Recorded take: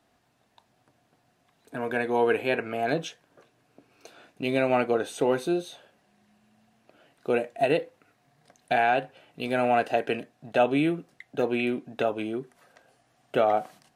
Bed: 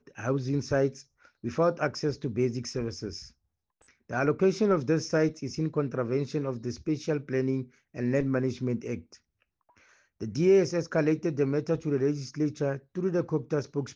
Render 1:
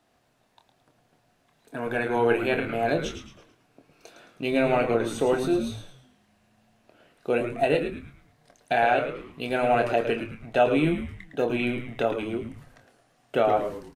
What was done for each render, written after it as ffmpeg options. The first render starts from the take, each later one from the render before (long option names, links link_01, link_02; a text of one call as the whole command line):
ffmpeg -i in.wav -filter_complex "[0:a]asplit=2[link_01][link_02];[link_02]adelay=26,volume=-8.5dB[link_03];[link_01][link_03]amix=inputs=2:normalize=0,asplit=6[link_04][link_05][link_06][link_07][link_08][link_09];[link_05]adelay=109,afreqshift=-120,volume=-8dB[link_10];[link_06]adelay=218,afreqshift=-240,volume=-16dB[link_11];[link_07]adelay=327,afreqshift=-360,volume=-23.9dB[link_12];[link_08]adelay=436,afreqshift=-480,volume=-31.9dB[link_13];[link_09]adelay=545,afreqshift=-600,volume=-39.8dB[link_14];[link_04][link_10][link_11][link_12][link_13][link_14]amix=inputs=6:normalize=0" out.wav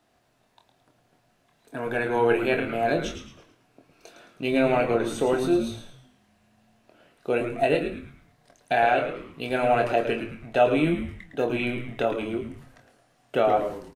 ffmpeg -i in.wav -filter_complex "[0:a]asplit=2[link_01][link_02];[link_02]adelay=23,volume=-10.5dB[link_03];[link_01][link_03]amix=inputs=2:normalize=0,aecho=1:1:165:0.0794" out.wav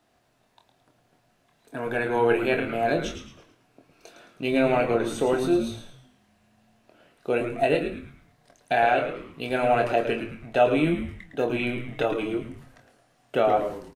ffmpeg -i in.wav -filter_complex "[0:a]asettb=1/sr,asplit=3[link_01][link_02][link_03];[link_01]atrim=end=1.954[link_04];[link_02]atrim=start=1.95:end=2.44,asetpts=PTS-STARTPTS,afade=type=in:duration=0.004:curve=qsin,afade=type=out:start_time=0.486:duration=0.004:curve=qsin,bandreject=frequency=5800:width=12[link_05];[link_03]atrim=start=2.436[link_06];[link_04][link_05]acrossfade=duration=0.004:curve1=hsin:curve2=qsin[link_07];[link_07][link_06]acrossfade=duration=0.004:curve1=qsin:curve2=hsin,asettb=1/sr,asplit=3[link_08][link_09][link_10];[link_08]atrim=end=11.924[link_11];[link_09]atrim=start=11.92:end=12.5,asetpts=PTS-STARTPTS,afade=type=in:duration=0.004:curve=qsin,afade=type=out:start_time=0.576:duration=0.004:curve=qsin,aecho=1:1:6.4:0.61,atrim=end_sample=25578[link_12];[link_10]atrim=start=12.496[link_13];[link_11][link_12]acrossfade=duration=0.004:curve1=hsin:curve2=qsin[link_14];[link_14][link_13]acrossfade=duration=0.004:curve1=qsin:curve2=hsin" out.wav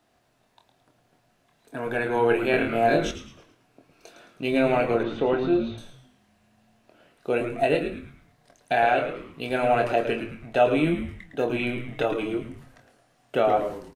ffmpeg -i in.wav -filter_complex "[0:a]asettb=1/sr,asplit=3[link_01][link_02][link_03];[link_01]atrim=end=2.514[link_04];[link_02]atrim=start=2.51:end=3.11,asetpts=PTS-STARTPTS,afade=type=in:duration=0.004:curve=qsin,afade=type=out:start_time=0.596:duration=0.004:curve=qsin,asplit=2[link_05][link_06];[link_06]adelay=26,volume=-3.5dB[link_07];[link_05][link_07]amix=inputs=2:normalize=0,atrim=end_sample=26460[link_08];[link_03]atrim=start=3.106[link_09];[link_04][link_08]acrossfade=duration=0.004:curve1=hsin:curve2=qsin[link_10];[link_10][link_09]acrossfade=duration=0.004:curve1=qsin:curve2=hsin,asettb=1/sr,asplit=3[link_11][link_12][link_13];[link_11]atrim=end=5.034[link_14];[link_12]atrim=start=5.03:end=5.78,asetpts=PTS-STARTPTS,afade=type=in:duration=0.004:curve=qsin,afade=type=out:start_time=0.746:duration=0.004:curve=qsin,lowpass=frequency=3600:width=0.5412,lowpass=frequency=3600:width=1.3066[link_15];[link_13]atrim=start=5.776[link_16];[link_14][link_15]acrossfade=duration=0.004:curve1=hsin:curve2=qsin[link_17];[link_17][link_16]acrossfade=duration=0.004:curve1=qsin:curve2=hsin" out.wav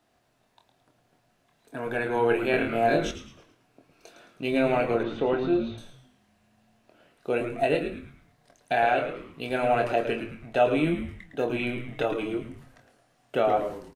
ffmpeg -i in.wav -af "volume=-2dB" out.wav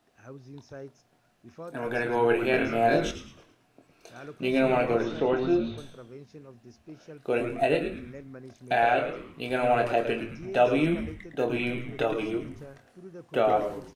ffmpeg -i in.wav -i bed.wav -filter_complex "[1:a]volume=-17dB[link_01];[0:a][link_01]amix=inputs=2:normalize=0" out.wav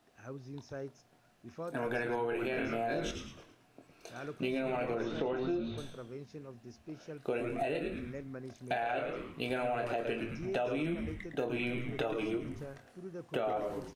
ffmpeg -i in.wav -af "alimiter=limit=-17dB:level=0:latency=1:release=10,acompressor=threshold=-31dB:ratio=6" out.wav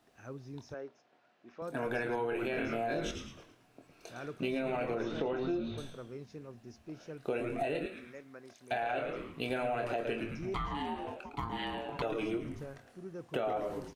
ffmpeg -i in.wav -filter_complex "[0:a]asettb=1/sr,asplit=3[link_01][link_02][link_03];[link_01]atrim=end=0.744[link_04];[link_02]atrim=start=0.74:end=1.62,asetpts=PTS-STARTPTS,afade=type=in:duration=0.004:curve=qsin,afade=type=out:start_time=0.876:duration=0.004:curve=qsin,highpass=320,lowpass=3700[link_05];[link_03]atrim=start=1.616[link_06];[link_04][link_05]acrossfade=duration=0.004:curve1=hsin:curve2=qsin[link_07];[link_07][link_06]acrossfade=duration=0.004:curve1=qsin:curve2=hsin,asettb=1/sr,asplit=3[link_08][link_09][link_10];[link_08]atrim=end=7.864[link_11];[link_09]atrim=start=7.86:end=8.72,asetpts=PTS-STARTPTS,afade=type=in:duration=0.004:curve=qsin,afade=type=out:start_time=0.856:duration=0.004:curve=qsin,highpass=frequency=720:poles=1[link_12];[link_10]atrim=start=8.716[link_13];[link_11][link_12]acrossfade=duration=0.004:curve1=hsin:curve2=qsin[link_14];[link_14][link_13]acrossfade=duration=0.004:curve1=qsin:curve2=hsin,asettb=1/sr,asplit=3[link_15][link_16][link_17];[link_15]atrim=end=10.544[link_18];[link_16]atrim=start=10.54:end=12.02,asetpts=PTS-STARTPTS,afade=type=in:duration=0.004:curve=qsin,afade=type=out:start_time=1.476:duration=0.004:curve=qsin,aeval=exprs='val(0)*sin(2*PI*570*n/s)':channel_layout=same[link_19];[link_17]atrim=start=12.016[link_20];[link_18][link_19]acrossfade=duration=0.004:curve1=hsin:curve2=qsin[link_21];[link_21][link_20]acrossfade=duration=0.004:curve1=qsin:curve2=hsin" out.wav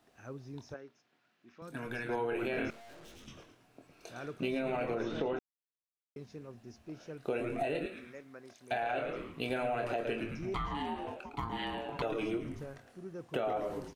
ffmpeg -i in.wav -filter_complex "[0:a]asettb=1/sr,asplit=3[link_01][link_02][link_03];[link_01]atrim=end=0.764[link_04];[link_02]atrim=start=0.76:end=2.09,asetpts=PTS-STARTPTS,afade=type=in:duration=0.004:curve=qsin,afade=type=out:start_time=1.326:duration=0.004:curve=qsin,equalizer=frequency=630:width_type=o:width=1.6:gain=-11.5[link_05];[link_03]atrim=start=2.086[link_06];[link_04][link_05]acrossfade=duration=0.004:curve1=hsin:curve2=qsin[link_07];[link_07][link_06]acrossfade=duration=0.004:curve1=qsin:curve2=hsin,asettb=1/sr,asplit=3[link_08][link_09][link_10];[link_08]atrim=end=2.704[link_11];[link_09]atrim=start=2.7:end=3.28,asetpts=PTS-STARTPTS,afade=type=in:duration=0.004:curve=qsin,afade=type=out:start_time=0.576:duration=0.004:curve=qsin,aeval=exprs='(tanh(447*val(0)+0.55)-tanh(0.55))/447':channel_layout=same[link_12];[link_10]atrim=start=3.276[link_13];[link_11][link_12]acrossfade=duration=0.004:curve1=hsin:curve2=qsin[link_14];[link_14][link_13]acrossfade=duration=0.004:curve1=qsin:curve2=hsin,asplit=3[link_15][link_16][link_17];[link_15]atrim=end=5.39,asetpts=PTS-STARTPTS,afade=type=out:start_time=5.386:duration=0.004:curve=hsin[link_18];[link_16]atrim=start=5.39:end=6.16,asetpts=PTS-STARTPTS,volume=0[link_19];[link_17]atrim=start=6.16,asetpts=PTS-STARTPTS,afade=type=in:duration=0.004:curve=hsin[link_20];[link_18][link_19][link_20]concat=n=3:v=0:a=1" out.wav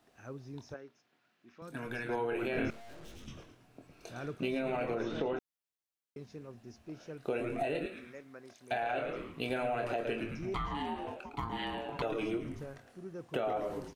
ffmpeg -i in.wav -filter_complex "[0:a]asettb=1/sr,asplit=3[link_01][link_02][link_03];[link_01]atrim=end=2.554[link_04];[link_02]atrim=start=2.55:end=4.35,asetpts=PTS-STARTPTS,afade=type=in:duration=0.004:curve=qsin,afade=type=out:start_time=1.796:duration=0.004:curve=qsin,lowshelf=frequency=200:gain=8[link_05];[link_03]atrim=start=4.346[link_06];[link_04][link_05]acrossfade=duration=0.004:curve1=hsin:curve2=qsin[link_07];[link_07][link_06]acrossfade=duration=0.004:curve1=qsin:curve2=hsin" out.wav